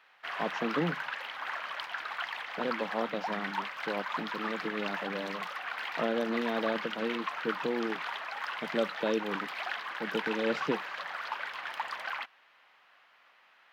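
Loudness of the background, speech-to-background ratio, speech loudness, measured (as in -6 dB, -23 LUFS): -36.5 LUFS, 1.0 dB, -35.5 LUFS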